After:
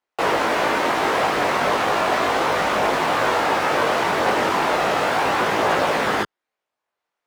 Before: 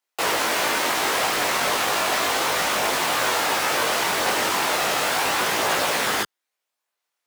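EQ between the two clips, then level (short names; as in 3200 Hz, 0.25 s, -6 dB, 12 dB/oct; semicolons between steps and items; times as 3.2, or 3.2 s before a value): LPF 1100 Hz 6 dB/oct; +6.5 dB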